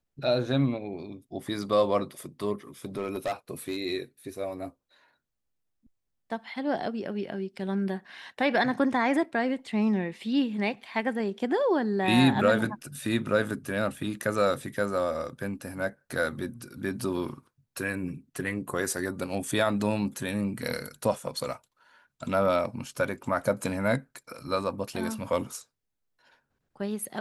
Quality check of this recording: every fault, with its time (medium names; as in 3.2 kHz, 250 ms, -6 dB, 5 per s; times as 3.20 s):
2.85–3.79 s: clipped -25.5 dBFS